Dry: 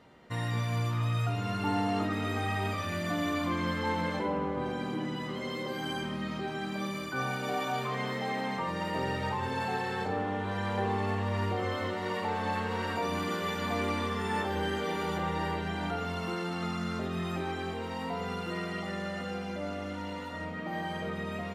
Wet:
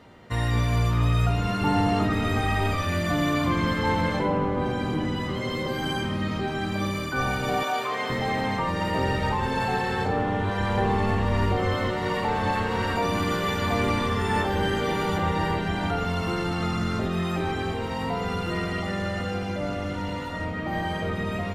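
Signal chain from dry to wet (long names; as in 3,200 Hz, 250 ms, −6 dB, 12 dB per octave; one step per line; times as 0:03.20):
sub-octave generator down 1 octave, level −3 dB
0:07.63–0:08.10: high-pass filter 370 Hz 12 dB per octave
level +6.5 dB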